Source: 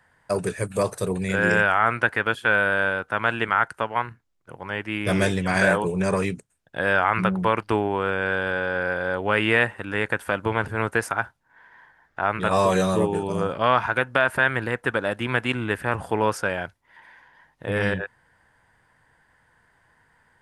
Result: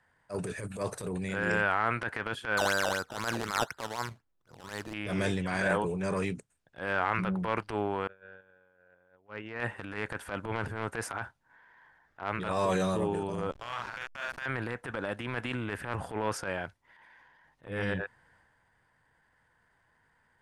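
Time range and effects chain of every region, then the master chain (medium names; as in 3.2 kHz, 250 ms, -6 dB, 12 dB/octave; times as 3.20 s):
2.57–4.94 s: resonant high shelf 2.3 kHz -6.5 dB, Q 1.5 + decimation with a swept rate 14× 4 Hz
8.07–9.60 s: gate -22 dBFS, range -36 dB + boxcar filter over 9 samples + compression 1.5:1, threshold -37 dBFS
13.51–14.46 s: amplifier tone stack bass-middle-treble 10-0-10 + doubling 42 ms -3.5 dB + hysteresis with a dead band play -28.5 dBFS
whole clip: transient shaper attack -12 dB, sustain +5 dB; Bessel low-pass 9.9 kHz, order 2; trim -7.5 dB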